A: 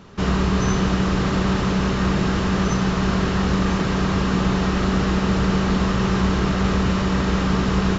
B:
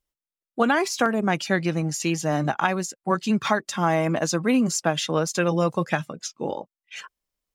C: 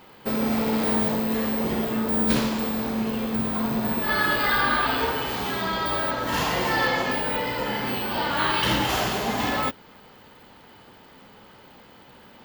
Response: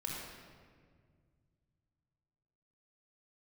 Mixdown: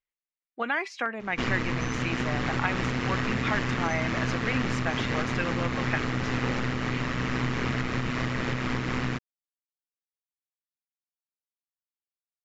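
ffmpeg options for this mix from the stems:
-filter_complex "[0:a]adelay=1200,volume=-2dB[a];[1:a]lowpass=3.6k,lowshelf=f=370:g=-8.5,volume=-8.5dB[b];[a]aeval=exprs='val(0)*sin(2*PI*61*n/s)':c=same,alimiter=limit=-18.5dB:level=0:latency=1:release=313,volume=0dB[c];[b][c]amix=inputs=2:normalize=0,equalizer=f=2.1k:t=o:w=0.74:g=10.5"

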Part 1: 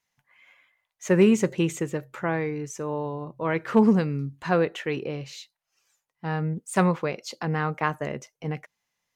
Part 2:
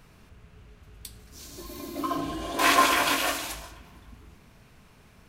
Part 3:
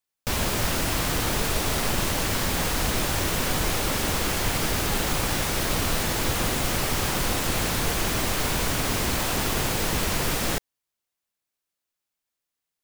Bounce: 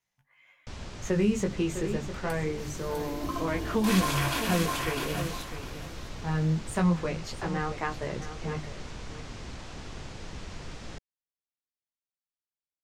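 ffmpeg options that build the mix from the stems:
-filter_complex "[0:a]bandreject=f=50:t=h:w=6,bandreject=f=100:t=h:w=6,bandreject=f=150:t=h:w=6,bandreject=f=200:t=h:w=6,bandreject=f=250:t=h:w=6,bandreject=f=300:t=h:w=6,flanger=delay=15.5:depth=5.5:speed=0.26,volume=-1.5dB,asplit=2[a][b];[b]volume=-13dB[c];[1:a]adelay=1250,volume=-6dB,asplit=2[d][e];[e]volume=-4.5dB[f];[2:a]lowpass=f=6.9k:w=0.5412,lowpass=f=6.9k:w=1.3066,adelay=400,volume=-18.5dB[g];[c][f]amix=inputs=2:normalize=0,aecho=0:1:652|1304|1956:1|0.21|0.0441[h];[a][d][g][h]amix=inputs=4:normalize=0,lowshelf=f=190:g=7.5,acrossover=split=200|3000[i][j][k];[j]acompressor=threshold=-26dB:ratio=6[l];[i][l][k]amix=inputs=3:normalize=0"

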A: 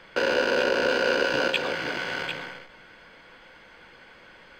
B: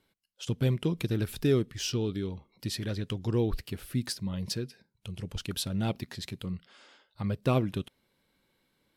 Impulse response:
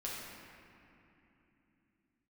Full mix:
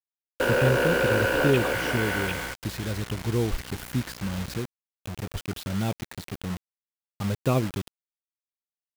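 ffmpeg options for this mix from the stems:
-filter_complex "[0:a]aeval=exprs='0.376*sin(PI/2*2.82*val(0)/0.376)':c=same,aeval=exprs='val(0)+0.0251*(sin(2*PI*60*n/s)+sin(2*PI*2*60*n/s)/2+sin(2*PI*3*60*n/s)/3+sin(2*PI*4*60*n/s)/4+sin(2*PI*5*60*n/s)/5)':c=same,volume=-9.5dB[a];[1:a]adynamicequalizer=threshold=0.0126:dfrequency=290:dqfactor=0.76:tfrequency=290:tqfactor=0.76:attack=5:release=100:ratio=0.375:range=2:mode=cutabove:tftype=bell,volume=3dB,asplit=2[b][c];[c]apad=whole_len=202684[d];[a][d]sidechaingate=range=-33dB:threshold=-56dB:ratio=16:detection=peak[e];[e][b]amix=inputs=2:normalize=0,acrossover=split=2800[f][g];[g]acompressor=threshold=-45dB:ratio=4:attack=1:release=60[h];[f][h]amix=inputs=2:normalize=0,acrusher=bits=5:mix=0:aa=0.000001"

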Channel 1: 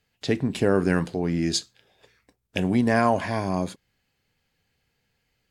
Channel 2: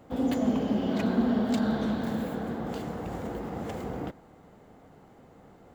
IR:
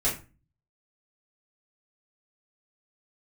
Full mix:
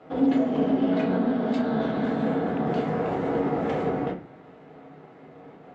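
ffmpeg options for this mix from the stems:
-filter_complex "[0:a]volume=-20dB[a];[1:a]alimiter=level_in=1.5dB:limit=-24dB:level=0:latency=1:release=176,volume=-1.5dB,aeval=exprs='sgn(val(0))*max(abs(val(0))-0.00106,0)':c=same,volume=2dB,asplit=2[b][c];[c]volume=-3dB[d];[2:a]atrim=start_sample=2205[e];[d][e]afir=irnorm=-1:irlink=0[f];[a][b][f]amix=inputs=3:normalize=0,highpass=180,lowpass=3k"

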